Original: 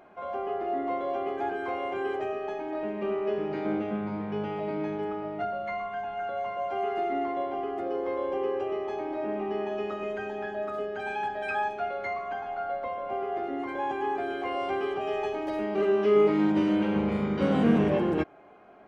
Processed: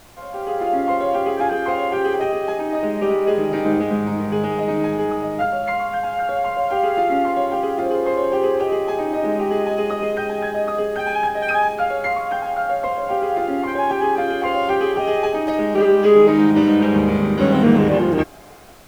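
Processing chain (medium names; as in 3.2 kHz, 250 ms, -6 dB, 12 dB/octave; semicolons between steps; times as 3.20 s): level rider gain up to 11 dB; added noise pink -47 dBFS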